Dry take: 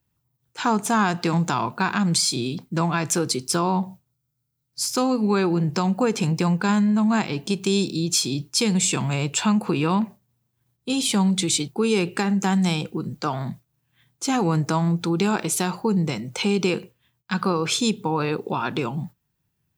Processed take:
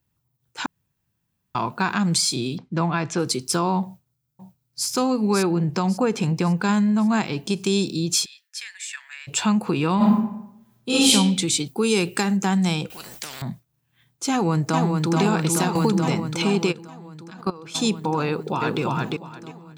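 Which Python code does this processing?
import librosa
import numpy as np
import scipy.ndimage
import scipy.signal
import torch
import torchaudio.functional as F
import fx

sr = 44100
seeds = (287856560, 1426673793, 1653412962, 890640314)

y = fx.gaussian_blur(x, sr, sigma=1.6, at=(2.57, 3.18), fade=0.02)
y = fx.echo_throw(y, sr, start_s=3.84, length_s=1.03, ms=550, feedback_pct=45, wet_db=-4.5)
y = fx.high_shelf(y, sr, hz=4300.0, db=-5.5, at=(5.51, 6.57))
y = fx.ladder_highpass(y, sr, hz=1700.0, resonance_pct=85, at=(8.24, 9.27), fade=0.02)
y = fx.reverb_throw(y, sr, start_s=9.96, length_s=1.14, rt60_s=0.81, drr_db=-9.0)
y = fx.high_shelf(y, sr, hz=5000.0, db=10.5, at=(11.66, 12.37))
y = fx.spectral_comp(y, sr, ratio=10.0, at=(12.9, 13.42))
y = fx.echo_throw(y, sr, start_s=14.3, length_s=0.85, ms=430, feedback_pct=80, wet_db=-3.5)
y = fx.band_squash(y, sr, depth_pct=100, at=(15.75, 16.2))
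y = fx.level_steps(y, sr, step_db=20, at=(16.71, 17.74), fade=0.02)
y = fx.echo_throw(y, sr, start_s=18.26, length_s=0.55, ms=350, feedback_pct=20, wet_db=-2.0)
y = fx.edit(y, sr, fx.room_tone_fill(start_s=0.66, length_s=0.89), tone=tone)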